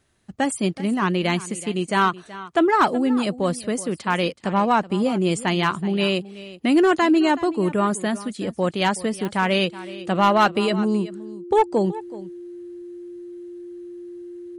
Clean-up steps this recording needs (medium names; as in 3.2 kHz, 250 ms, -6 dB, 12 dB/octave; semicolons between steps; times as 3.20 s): clip repair -9.5 dBFS; de-click; band-stop 350 Hz, Q 30; inverse comb 375 ms -17 dB